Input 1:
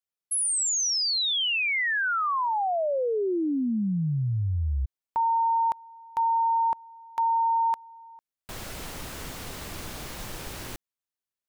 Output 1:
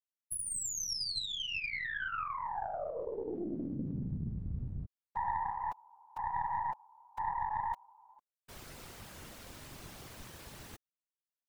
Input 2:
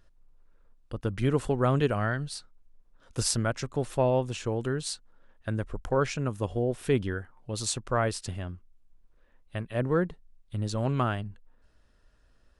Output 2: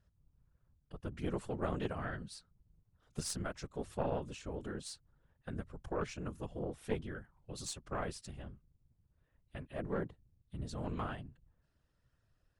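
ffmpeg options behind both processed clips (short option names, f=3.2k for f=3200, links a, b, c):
-af "afftfilt=real='hypot(re,im)*cos(2*PI*random(0))':imag='hypot(re,im)*sin(2*PI*random(1))':win_size=512:overlap=0.75,aeval=exprs='0.158*(cos(1*acos(clip(val(0)/0.158,-1,1)))-cos(1*PI/2))+0.0708*(cos(2*acos(clip(val(0)/0.158,-1,1)))-cos(2*PI/2))+0.00501*(cos(4*acos(clip(val(0)/0.158,-1,1)))-cos(4*PI/2))':c=same,volume=-6dB"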